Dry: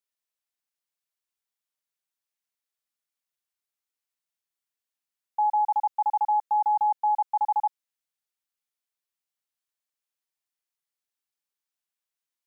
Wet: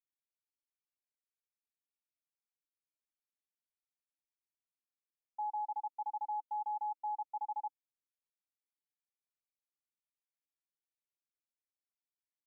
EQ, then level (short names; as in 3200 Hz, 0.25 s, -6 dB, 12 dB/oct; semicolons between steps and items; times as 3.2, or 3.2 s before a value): vocal tract filter e; vowel filter u; +13.0 dB